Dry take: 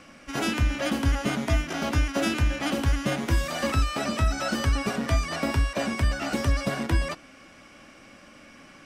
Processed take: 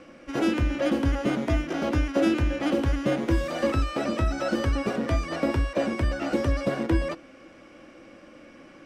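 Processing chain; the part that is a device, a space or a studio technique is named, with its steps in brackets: inside a helmet (treble shelf 5.2 kHz -10 dB; small resonant body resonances 340/500 Hz, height 11 dB, ringing for 40 ms); trim -2 dB

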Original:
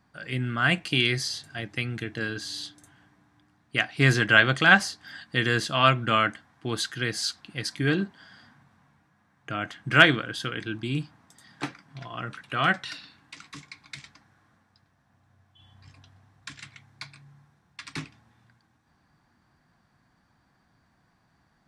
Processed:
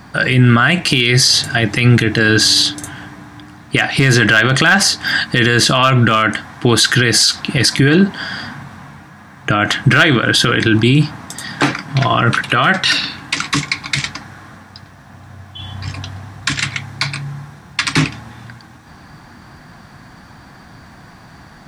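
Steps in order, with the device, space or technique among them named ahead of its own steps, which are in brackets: loud club master (compression 2:1, threshold -28 dBFS, peak gain reduction 10 dB; hard clipper -16 dBFS, distortion -23 dB; loudness maximiser +28 dB); trim -1 dB

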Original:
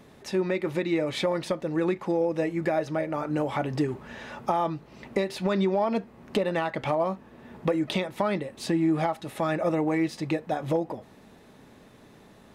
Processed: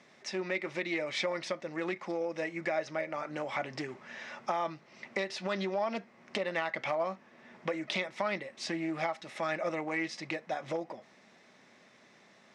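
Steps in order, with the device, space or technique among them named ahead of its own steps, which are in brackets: full-range speaker at full volume (loudspeaker Doppler distortion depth 0.12 ms; cabinet simulation 270–7900 Hz, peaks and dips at 290 Hz -8 dB, 440 Hz -8 dB, 880 Hz -4 dB, 2.1 kHz +8 dB, 5.5 kHz +7 dB); 5.27–5.87 s: band-stop 2.2 kHz, Q 10; trim -4 dB

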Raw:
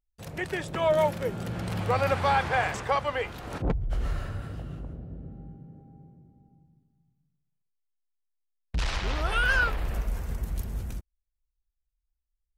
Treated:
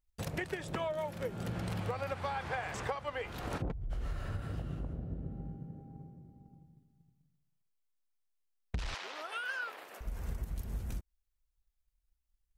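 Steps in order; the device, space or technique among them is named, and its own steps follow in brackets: drum-bus smash (transient shaper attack +7 dB, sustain +1 dB; compression 10:1, threshold -33 dBFS, peak gain reduction 18 dB; saturation -21.5 dBFS, distortion -30 dB); 8.94–10.01 s: Bessel high-pass 500 Hz, order 4

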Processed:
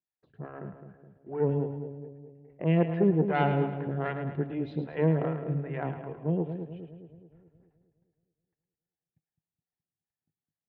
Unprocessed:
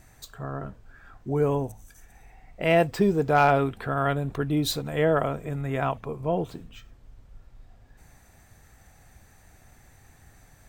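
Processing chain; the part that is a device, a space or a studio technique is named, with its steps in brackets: gate -46 dBFS, range -38 dB; Bessel low-pass 1.3 kHz, order 2; vibe pedal into a guitar amplifier (lamp-driven phase shifter 2.5 Hz; valve stage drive 16 dB, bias 0.6; cabinet simulation 110–3700 Hz, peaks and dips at 160 Hz +9 dB, 350 Hz +4 dB, 650 Hz -4 dB, 1.2 kHz -8 dB, 1.8 kHz +4 dB, 2.8 kHz +6 dB); two-band feedback delay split 640 Hz, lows 210 ms, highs 108 ms, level -8.5 dB

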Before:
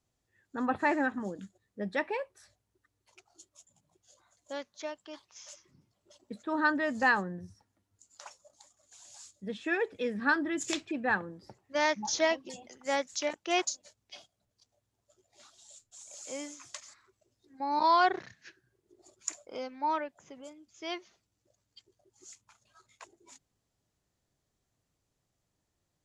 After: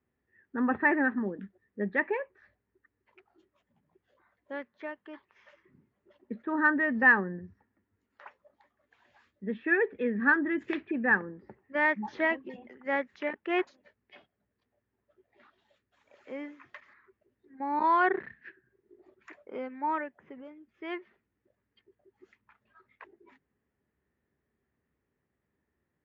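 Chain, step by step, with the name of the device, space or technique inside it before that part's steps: bass cabinet (cabinet simulation 65–2400 Hz, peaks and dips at 66 Hz +7 dB, 110 Hz -6 dB, 230 Hz +7 dB, 400 Hz +7 dB, 680 Hz -5 dB, 1.8 kHz +8 dB)

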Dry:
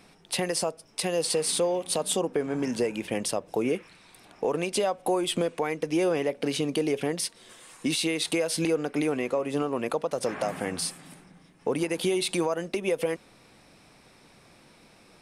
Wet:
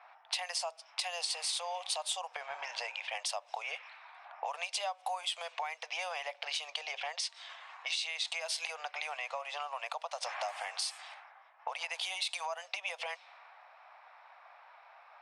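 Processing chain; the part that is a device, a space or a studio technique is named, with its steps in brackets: steep high-pass 680 Hz 48 dB/octave; level-controlled noise filter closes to 1.1 kHz, open at -31 dBFS; jukebox (low-pass 5.9 kHz 12 dB/octave; resonant low shelf 270 Hz +9.5 dB, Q 3; compression 4:1, threshold -42 dBFS, peak gain reduction 13 dB); 6.68–8.41 s: low-pass 8.5 kHz 24 dB/octave; dynamic bell 1.5 kHz, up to -7 dB, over -60 dBFS, Q 1.4; trim +8.5 dB

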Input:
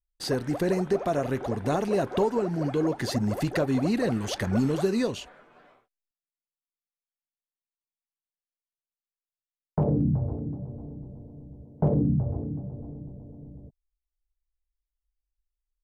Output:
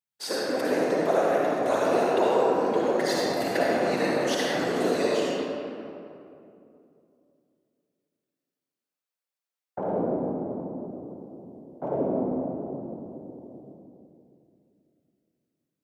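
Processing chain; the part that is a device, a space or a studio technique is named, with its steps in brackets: whispering ghost (whisper effect; high-pass 450 Hz 12 dB/octave; reverberation RT60 2.6 s, pre-delay 49 ms, DRR -5 dB)

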